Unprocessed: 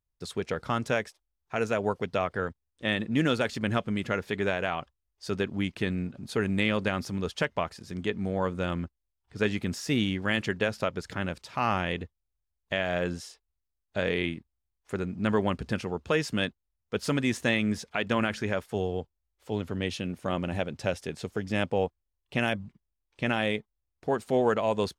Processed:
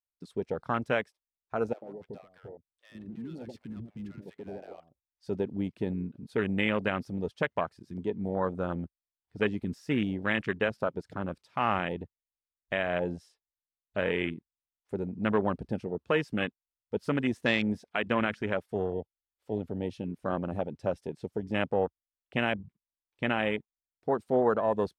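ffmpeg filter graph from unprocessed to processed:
-filter_complex "[0:a]asettb=1/sr,asplit=3[a][b][c];[a]atrim=end=1.734[d];[b]atrim=start=1.73:end=5.27,asetpts=PTS-STARTPTS,afade=t=in:d=0.004:c=qsin,afade=t=out:st=3.536:d=0.004:c=qsin,acompressor=threshold=-31dB:ratio=6:attack=3.2:release=140:knee=1:detection=peak,asoftclip=type=hard:threshold=-33dB,acrossover=split=610[e][f];[e]adelay=90[g];[g][f]amix=inputs=2:normalize=0,atrim=end_sample=156114[h];[c]atrim=start=5.266[i];[d][h]acrossfade=d=0.004:c1=hsin:c2=qsin[j];[j][i]acrossfade=d=0.004:c1=qsin:c2=hsin,lowshelf=f=99:g=-9.5,afwtdn=0.0251,equalizer=f=6.8k:w=5.9:g=-5"

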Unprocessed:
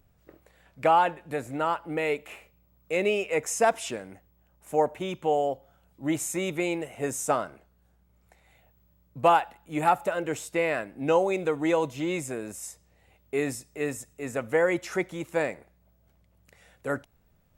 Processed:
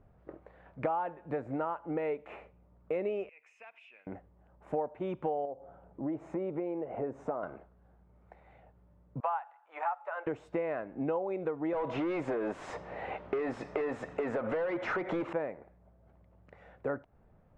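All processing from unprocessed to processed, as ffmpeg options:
-filter_complex "[0:a]asettb=1/sr,asplit=3[a][b][c];[a]atrim=end=3.294[d];[b]atrim=start=3.29:end=4.07,asetpts=PTS-STARTPTS,afade=t=in:d=0.004:c=qsin,afade=t=out:st=0.776:d=0.004:c=qsin,bandpass=f=2.5k:t=q:w=10,aemphasis=mode=production:type=75kf,acompressor=threshold=-47dB:ratio=4:attack=3.2:release=140:knee=1:detection=peak[e];[c]atrim=start=4.066[f];[d][e]acrossfade=d=0.004:c1=hsin:c2=qsin[g];[g][f]acrossfade=d=0.004:c1=qsin:c2=hsin,asettb=1/sr,asplit=3[h][i][j];[h]atrim=end=5.454[k];[i]atrim=start=5.45:end=7.43,asetpts=PTS-STARTPTS,afade=t=in:d=0.004:c=qsin,afade=t=out:st=1.976:d=0.004:c=qsin,lowpass=f=1.7k:p=1,equalizer=f=480:t=o:w=2.7:g=7,acompressor=threshold=-40dB:ratio=2:attack=3.2:release=140:knee=1:detection=peak[l];[j]atrim=start=7.426[m];[k][l]acrossfade=d=0.004:c1=hsin:c2=qsin[n];[n][m]acrossfade=d=0.004:c1=qsin:c2=hsin,asettb=1/sr,asplit=3[o][p][q];[o]atrim=end=9.204[r];[p]atrim=start=9.2:end=10.27,asetpts=PTS-STARTPTS,afade=t=in:d=0.004:c=qsin,afade=t=out:st=1.066:d=0.004:c=qsin,highpass=f=830:w=0.5412,highpass=f=830:w=1.3066,equalizer=f=9.8k:t=o:w=2.2:g=-14[s];[q]atrim=start=10.266[t];[r][s]acrossfade=d=0.004:c1=hsin:c2=qsin[u];[u][t]acrossfade=d=0.004:c1=qsin:c2=hsin,asettb=1/sr,asplit=3[v][w][x];[v]atrim=end=11.734[y];[w]atrim=start=11.73:end=15.33,asetpts=PTS-STARTPTS,afade=t=in:d=0.004:c=qsin,afade=t=out:st=3.596:d=0.004:c=qsin,acompressor=threshold=-36dB:ratio=10:attack=3.2:release=140:knee=1:detection=peak,asplit=2[z][aa];[aa]highpass=f=720:p=1,volume=32dB,asoftclip=type=tanh:threshold=-17dB[ab];[z][ab]amix=inputs=2:normalize=0,lowpass=f=5.1k:p=1,volume=-6dB,highshelf=f=11k:g=-8[ac];[x]atrim=start=15.326[ad];[y][ac]acrossfade=d=0.004:c1=hsin:c2=qsin[ae];[ae][ad]acrossfade=d=0.004:c1=qsin:c2=hsin,lowpass=1.1k,lowshelf=f=300:g=-6.5,acompressor=threshold=-40dB:ratio=5,volume=8dB"

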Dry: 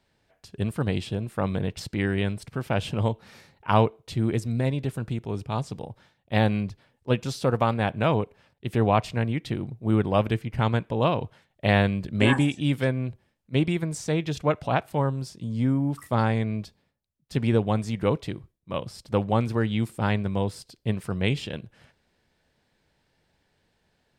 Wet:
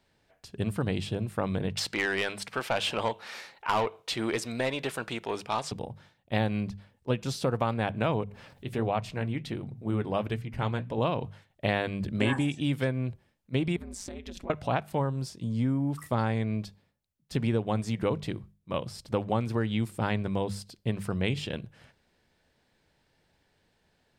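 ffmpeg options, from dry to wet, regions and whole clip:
-filter_complex "[0:a]asettb=1/sr,asplit=3[a][b][c];[a]atrim=end=1.774[d];[b]atrim=start=1.77:end=5.72,asetpts=PTS-STARTPTS,afade=t=in:d=0.004:c=qsin,afade=t=out:st=3.946:d=0.004:c=qsin,equalizer=f=100:t=o:w=2.9:g=-12.5,asoftclip=type=hard:threshold=-14.5dB,asplit=2[e][f];[f]highpass=f=720:p=1,volume=16dB,asoftclip=type=tanh:threshold=-14.5dB[g];[e][g]amix=inputs=2:normalize=0,lowpass=f=5.3k:p=1,volume=-6dB[h];[c]atrim=start=5.716[i];[d][h]acrossfade=d=0.004:c1=hsin:c2=qsin[j];[j][i]acrossfade=d=0.004:c1=qsin:c2=hsin,asettb=1/sr,asplit=3[k][l][m];[k]atrim=end=8.234[n];[l]atrim=start=8.23:end=10.98,asetpts=PTS-STARTPTS,afade=t=in:d=0.004:c=qsin,afade=t=out:st=2.746:d=0.004:c=qsin,bandreject=f=60:t=h:w=6,bandreject=f=120:t=h:w=6,bandreject=f=180:t=h:w=6,bandreject=f=240:t=h:w=6,acompressor=mode=upward:threshold=-31dB:ratio=2.5:attack=3.2:release=140:knee=2.83:detection=peak,flanger=delay=1.4:depth=6.5:regen=-63:speed=1.4:shape=sinusoidal[o];[m]atrim=start=10.976[p];[n][o]acrossfade=d=0.004:c1=hsin:c2=qsin[q];[q][p]acrossfade=d=0.004:c1=qsin:c2=hsin,asettb=1/sr,asplit=3[r][s][t];[r]atrim=end=13.764[u];[s]atrim=start=13.76:end=14.5,asetpts=PTS-STARTPTS,afade=t=in:d=0.004:c=qsin,afade=t=out:st=0.736:d=0.004:c=qsin,acompressor=threshold=-33dB:ratio=10:attack=3.2:release=140:knee=1:detection=peak,aeval=exprs='val(0)*sin(2*PI*96*n/s)':c=same[v];[t]atrim=start=14.496[w];[u][v]acrossfade=d=0.004:c1=hsin:c2=qsin[x];[x][w]acrossfade=d=0.004:c1=qsin:c2=hsin,bandreject=f=50:t=h:w=6,bandreject=f=100:t=h:w=6,bandreject=f=150:t=h:w=6,bandreject=f=200:t=h:w=6,acompressor=threshold=-25dB:ratio=2.5"

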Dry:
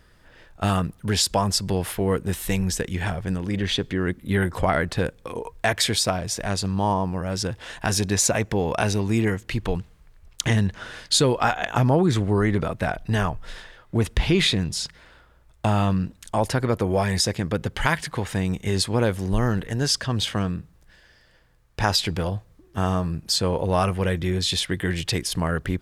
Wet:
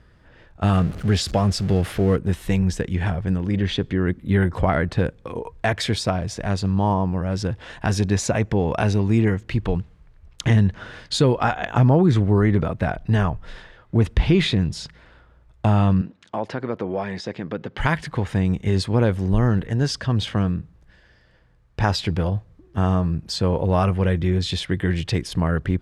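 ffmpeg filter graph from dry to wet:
-filter_complex "[0:a]asettb=1/sr,asplit=3[a][b][c];[a]atrim=end=0.734[d];[b]atrim=start=0.73:end=2.16,asetpts=PTS-STARTPTS,afade=t=in:d=0.004:c=qsin,afade=t=out:st=1.426:d=0.004:c=qsin,aeval=exprs='val(0)+0.5*0.0299*sgn(val(0))':c=same,equalizer=f=950:t=o:w=0.26:g=-8.5[e];[c]atrim=start=2.156[f];[d][e]acrossfade=d=0.004:c1=hsin:c2=qsin[g];[g][f]acrossfade=d=0.004:c1=qsin:c2=hsin,asettb=1/sr,asplit=3[h][i][j];[h]atrim=end=16.014[k];[i]atrim=start=16.01:end=17.78,asetpts=PTS-STARTPTS,afade=t=in:d=0.004:c=qsin,afade=t=out:st=1.766:d=0.004:c=qsin,acompressor=threshold=-28dB:ratio=1.5:attack=3.2:release=140:knee=1:detection=peak,highpass=220,lowpass=4.5k[l];[j]atrim=start=17.776[m];[k][l]acrossfade=d=0.004:c1=hsin:c2=qsin[n];[n][m]acrossfade=d=0.004:c1=qsin:c2=hsin,highpass=f=150:p=1,aemphasis=mode=reproduction:type=bsi"

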